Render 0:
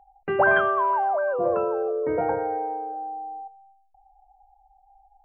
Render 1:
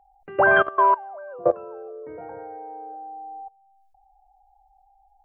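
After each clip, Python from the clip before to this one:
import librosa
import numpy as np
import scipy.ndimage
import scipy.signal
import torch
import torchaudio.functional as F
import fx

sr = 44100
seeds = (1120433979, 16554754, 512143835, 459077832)

y = fx.level_steps(x, sr, step_db=22)
y = y * 10.0 ** (6.5 / 20.0)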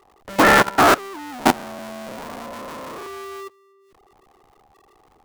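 y = fx.cycle_switch(x, sr, every=2, mode='inverted')
y = y * 10.0 ** (3.5 / 20.0)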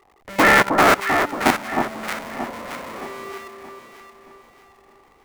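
y = fx.peak_eq(x, sr, hz=2100.0, db=7.0, octaves=0.45)
y = fx.echo_alternate(y, sr, ms=312, hz=1200.0, feedback_pct=63, wet_db=-4)
y = y * 10.0 ** (-2.0 / 20.0)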